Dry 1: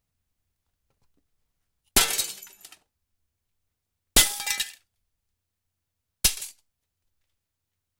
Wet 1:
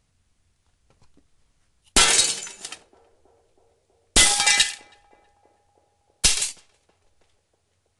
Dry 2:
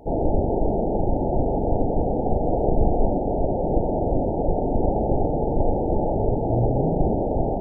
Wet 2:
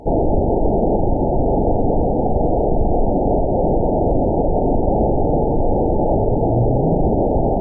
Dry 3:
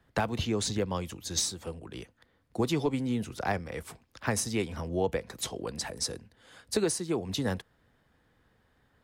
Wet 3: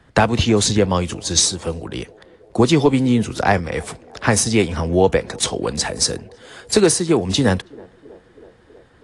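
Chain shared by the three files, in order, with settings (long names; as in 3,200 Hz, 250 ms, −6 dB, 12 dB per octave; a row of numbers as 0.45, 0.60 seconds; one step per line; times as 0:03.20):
brickwall limiter −16 dBFS
feedback echo with a band-pass in the loop 322 ms, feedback 78%, band-pass 500 Hz, level −23.5 dB
AAC 48 kbit/s 22,050 Hz
loudness normalisation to −18 LKFS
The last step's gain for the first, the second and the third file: +12.5, +8.0, +14.0 decibels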